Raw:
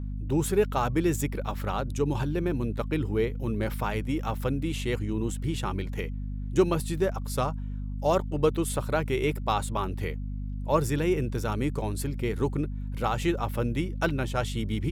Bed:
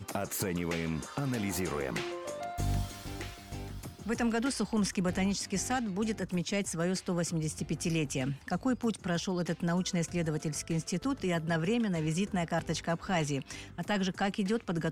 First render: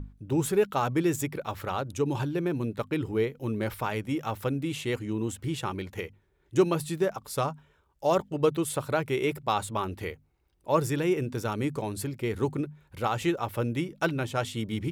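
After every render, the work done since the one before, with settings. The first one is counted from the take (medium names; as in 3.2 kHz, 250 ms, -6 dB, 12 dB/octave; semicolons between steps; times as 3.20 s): hum notches 50/100/150/200/250 Hz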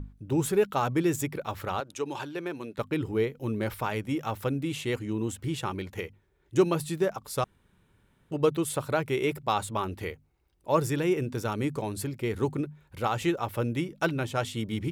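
1.80–2.78 s: frequency weighting A; 7.44–8.31 s: room tone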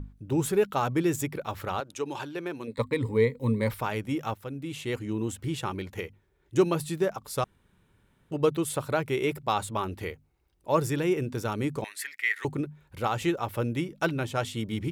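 2.67–3.71 s: rippled EQ curve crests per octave 0.98, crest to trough 15 dB; 4.34–5.06 s: fade in linear, from -13 dB; 11.84–12.45 s: resonant high-pass 1.9 kHz, resonance Q 10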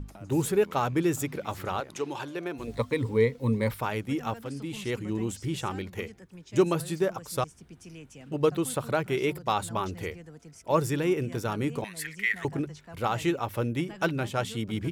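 add bed -15 dB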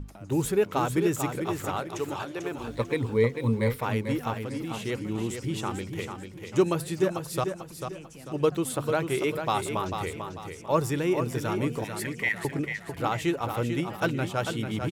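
feedback delay 444 ms, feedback 36%, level -7 dB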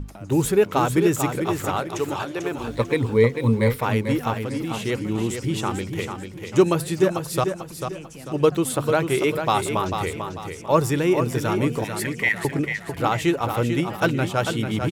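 trim +6 dB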